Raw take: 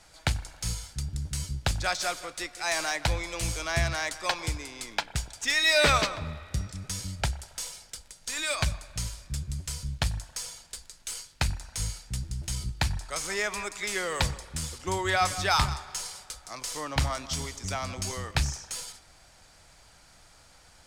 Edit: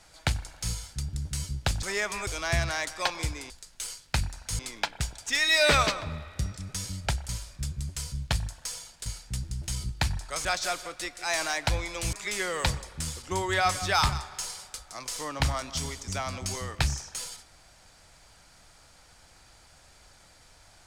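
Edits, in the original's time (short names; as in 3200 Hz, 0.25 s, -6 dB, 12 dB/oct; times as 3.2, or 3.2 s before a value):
1.83–3.51 swap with 13.25–13.69
7.44–9 cut
10.77–11.86 move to 4.74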